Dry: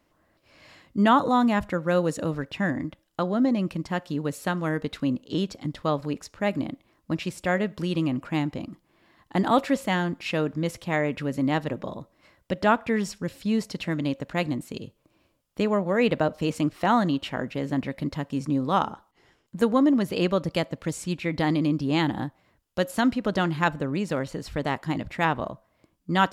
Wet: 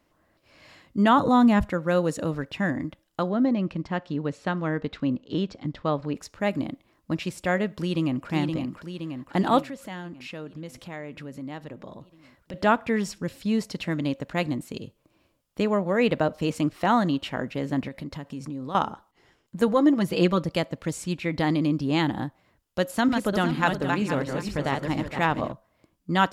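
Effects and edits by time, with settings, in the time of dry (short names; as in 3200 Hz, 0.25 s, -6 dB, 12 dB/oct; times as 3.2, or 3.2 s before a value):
1.18–1.65 low shelf 190 Hz +11 dB
3.29–6.15 air absorption 130 m
7.76–8.3 echo throw 0.52 s, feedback 65%, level -5 dB
9.62–12.54 compressor 2:1, threshold -43 dBFS
17.88–18.75 compressor 4:1, threshold -32 dBFS
19.67–20.44 comb 6 ms, depth 63%
22.85–25.52 regenerating reverse delay 0.234 s, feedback 48%, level -4.5 dB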